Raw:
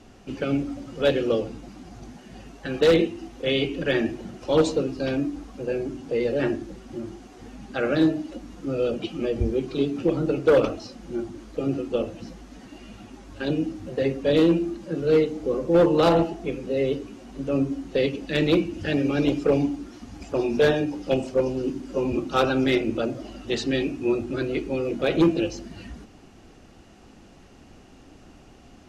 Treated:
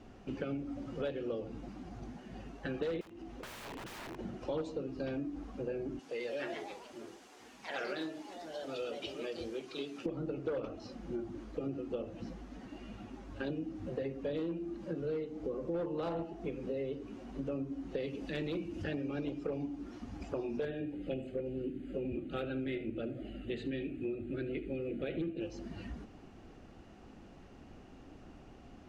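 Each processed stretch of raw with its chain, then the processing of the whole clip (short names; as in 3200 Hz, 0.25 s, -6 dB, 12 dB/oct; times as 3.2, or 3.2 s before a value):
3.01–4.19 self-modulated delay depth 0.33 ms + wrapped overs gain 26.5 dB + compressor, threshold -37 dBFS
5.99–10.06 HPF 1200 Hz 6 dB/oct + high shelf 4000 Hz +9.5 dB + echoes that change speed 0.201 s, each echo +3 st, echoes 3, each echo -6 dB
18–18.84 high shelf 5400 Hz +7.5 dB + transient shaper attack -7 dB, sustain +2 dB
20.65–25.41 fixed phaser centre 2400 Hz, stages 4 + echo 75 ms -16.5 dB
whole clip: high shelf 4000 Hz -12 dB; compressor 6:1, threshold -31 dBFS; gain -4 dB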